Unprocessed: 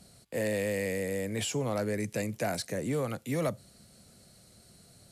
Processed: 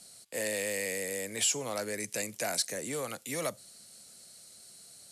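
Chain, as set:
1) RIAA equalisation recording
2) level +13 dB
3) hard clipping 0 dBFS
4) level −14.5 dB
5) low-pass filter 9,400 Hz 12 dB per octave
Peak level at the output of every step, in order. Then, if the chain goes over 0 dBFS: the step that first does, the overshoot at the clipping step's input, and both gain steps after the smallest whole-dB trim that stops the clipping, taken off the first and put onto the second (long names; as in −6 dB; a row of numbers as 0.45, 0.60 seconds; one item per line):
−15.5, −2.5, −2.5, −17.0, −18.5 dBFS
no step passes full scale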